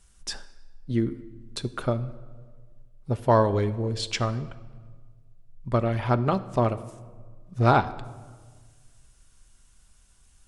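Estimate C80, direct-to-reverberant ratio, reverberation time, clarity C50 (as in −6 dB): 18.0 dB, 10.5 dB, 1.6 s, 16.0 dB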